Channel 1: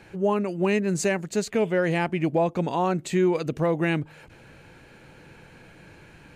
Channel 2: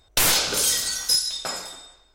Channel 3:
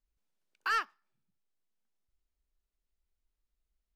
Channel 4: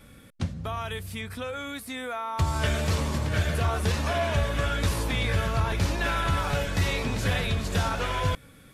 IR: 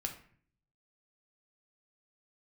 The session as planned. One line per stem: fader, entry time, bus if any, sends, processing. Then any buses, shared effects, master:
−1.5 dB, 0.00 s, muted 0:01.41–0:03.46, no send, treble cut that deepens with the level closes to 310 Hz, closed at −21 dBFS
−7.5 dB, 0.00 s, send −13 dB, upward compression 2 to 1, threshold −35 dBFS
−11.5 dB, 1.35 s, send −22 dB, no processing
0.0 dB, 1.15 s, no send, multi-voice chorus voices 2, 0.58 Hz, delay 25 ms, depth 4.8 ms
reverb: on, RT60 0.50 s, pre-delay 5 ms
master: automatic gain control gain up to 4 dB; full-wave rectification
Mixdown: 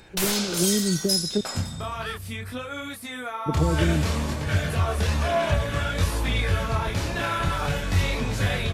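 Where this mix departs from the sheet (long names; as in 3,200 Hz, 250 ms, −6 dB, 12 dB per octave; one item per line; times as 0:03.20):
stem 2: send off
master: missing full-wave rectification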